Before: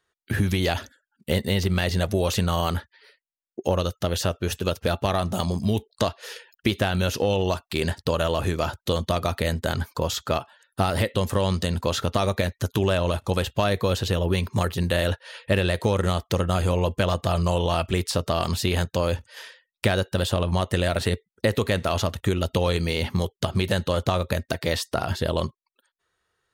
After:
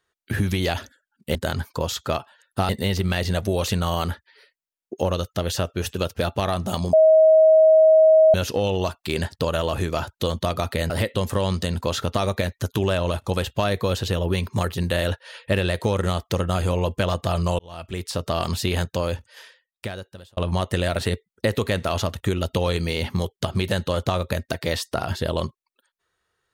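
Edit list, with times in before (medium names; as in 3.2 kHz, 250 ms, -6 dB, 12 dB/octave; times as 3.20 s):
5.59–7.00 s: bleep 634 Hz -10 dBFS
9.56–10.90 s: move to 1.35 s
17.59–18.35 s: fade in
18.86–20.37 s: fade out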